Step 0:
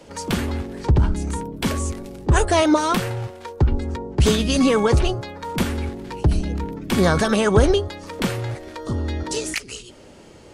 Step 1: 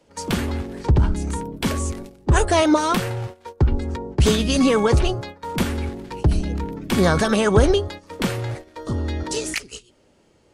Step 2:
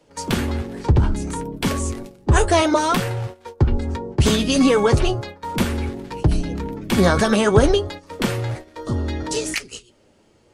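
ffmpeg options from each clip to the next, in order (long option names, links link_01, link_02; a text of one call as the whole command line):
ffmpeg -i in.wav -af "agate=range=-13dB:threshold=-33dB:ratio=16:detection=peak" out.wav
ffmpeg -i in.wav -af "flanger=delay=6.4:depth=3.4:regen=-56:speed=0.64:shape=triangular,volume=5.5dB" out.wav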